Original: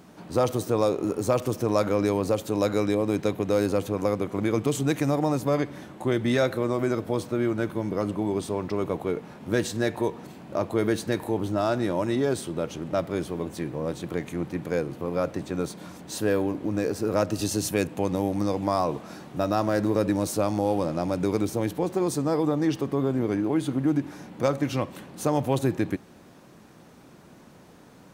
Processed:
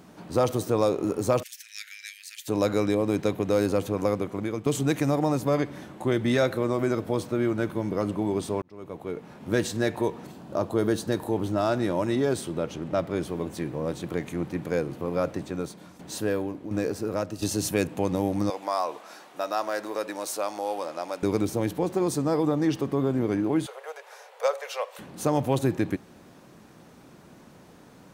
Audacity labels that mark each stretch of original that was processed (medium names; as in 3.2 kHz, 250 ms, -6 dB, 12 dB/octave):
1.430000	2.480000	steep high-pass 1.7 kHz 72 dB/octave
4.120000	4.660000	fade out, to -9.5 dB
8.620000	9.540000	fade in
10.310000	11.320000	peaking EQ 2.2 kHz -8 dB 0.55 oct
12.580000	13.230000	treble shelf 6.4 kHz -5.5 dB
15.280000	17.590000	tremolo saw down 1.4 Hz, depth 65%
18.500000	21.230000	high-pass 630 Hz
23.660000	24.990000	steep high-pass 440 Hz 96 dB/octave